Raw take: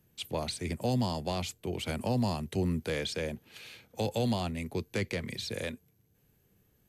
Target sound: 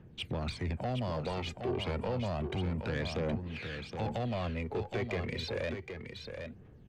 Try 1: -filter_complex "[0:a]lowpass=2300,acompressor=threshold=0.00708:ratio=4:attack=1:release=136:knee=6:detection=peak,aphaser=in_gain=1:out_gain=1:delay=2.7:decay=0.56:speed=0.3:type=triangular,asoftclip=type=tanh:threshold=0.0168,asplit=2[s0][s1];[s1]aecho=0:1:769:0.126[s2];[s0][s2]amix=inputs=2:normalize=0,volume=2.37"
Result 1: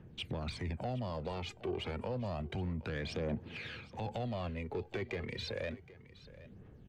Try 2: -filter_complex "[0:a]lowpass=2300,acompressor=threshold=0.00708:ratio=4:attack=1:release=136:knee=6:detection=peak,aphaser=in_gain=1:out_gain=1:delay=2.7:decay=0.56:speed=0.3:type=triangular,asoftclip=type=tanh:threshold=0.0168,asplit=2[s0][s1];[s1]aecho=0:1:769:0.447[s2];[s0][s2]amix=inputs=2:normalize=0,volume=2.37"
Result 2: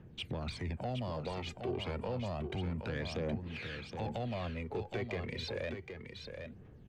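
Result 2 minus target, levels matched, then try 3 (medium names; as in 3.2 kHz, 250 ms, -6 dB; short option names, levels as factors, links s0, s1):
compression: peak gain reduction +5 dB
-filter_complex "[0:a]lowpass=2300,acompressor=threshold=0.015:ratio=4:attack=1:release=136:knee=6:detection=peak,aphaser=in_gain=1:out_gain=1:delay=2.7:decay=0.56:speed=0.3:type=triangular,asoftclip=type=tanh:threshold=0.0168,asplit=2[s0][s1];[s1]aecho=0:1:769:0.447[s2];[s0][s2]amix=inputs=2:normalize=0,volume=2.37"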